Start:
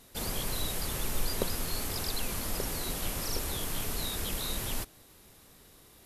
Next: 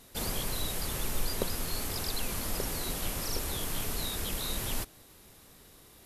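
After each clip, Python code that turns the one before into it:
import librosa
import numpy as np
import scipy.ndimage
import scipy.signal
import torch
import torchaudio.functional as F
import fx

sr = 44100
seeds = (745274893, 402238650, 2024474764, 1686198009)

y = fx.rider(x, sr, range_db=10, speed_s=0.5)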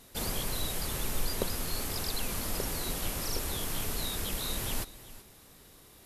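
y = x + 10.0 ** (-17.0 / 20.0) * np.pad(x, (int(378 * sr / 1000.0), 0))[:len(x)]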